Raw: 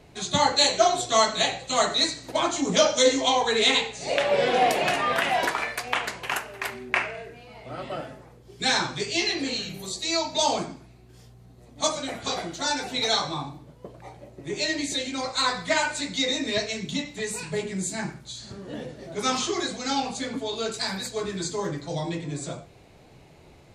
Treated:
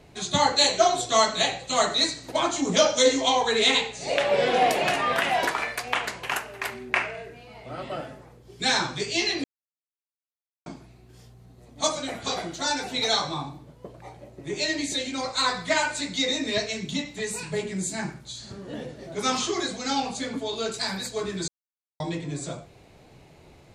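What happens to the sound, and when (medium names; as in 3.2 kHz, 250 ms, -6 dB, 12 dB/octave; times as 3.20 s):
9.44–10.66 s: mute
21.48–22.00 s: mute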